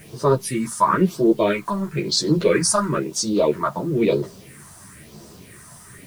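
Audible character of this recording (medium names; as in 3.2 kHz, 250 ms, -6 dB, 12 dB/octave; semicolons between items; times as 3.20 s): phasing stages 4, 1 Hz, lowest notch 410–2300 Hz; a quantiser's noise floor 10-bit, dither triangular; a shimmering, thickened sound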